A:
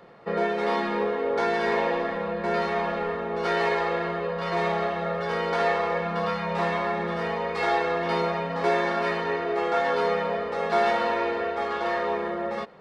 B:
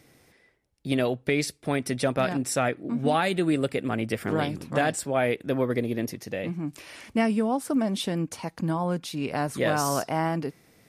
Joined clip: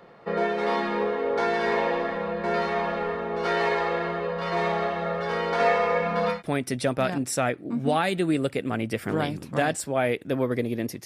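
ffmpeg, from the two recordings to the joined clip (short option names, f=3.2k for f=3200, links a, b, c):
-filter_complex "[0:a]asettb=1/sr,asplit=3[a][b][c];[a]atrim=end=5.594[d];[b]atrim=start=5.59:end=6.43,asetpts=PTS-STARTPTS,afade=t=in:d=0.004:c=qsin,afade=t=out:st=0.836:d=0.004:c=qsin,aecho=1:1:4.1:0.66,atrim=end_sample=37044[e];[c]atrim=start=6.426[f];[d][e]acrossfade=d=0.004:c1=hsin:c2=qsin[g];[g][f]acrossfade=d=0.004:c1=qsin:c2=hsin,apad=whole_dur=11.05,atrim=end=11.05,atrim=end=6.43,asetpts=PTS-STARTPTS[h];[1:a]atrim=start=1.48:end=6.24,asetpts=PTS-STARTPTS[i];[h][i]acrossfade=d=0.14:c1=tri:c2=tri"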